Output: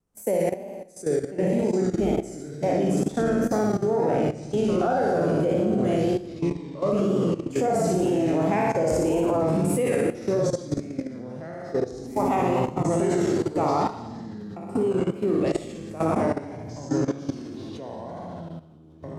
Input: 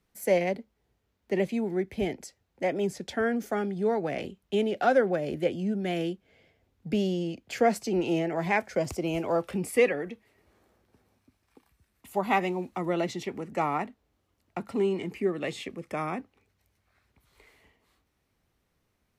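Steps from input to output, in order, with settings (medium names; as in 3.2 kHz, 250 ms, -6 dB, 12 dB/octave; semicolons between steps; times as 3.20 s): spectral sustain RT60 0.57 s; graphic EQ 2/4/8 kHz -11/-9/+7 dB; flutter echo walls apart 10 m, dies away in 1.1 s; wow and flutter 62 cents; 0.49–1.43 s: feedback comb 600 Hz, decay 0.3 s, mix 40%; ever faster or slower copies 688 ms, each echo -4 st, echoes 3, each echo -6 dB; level held to a coarse grid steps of 14 dB; treble shelf 7.1 kHz -9.5 dB; trim +6 dB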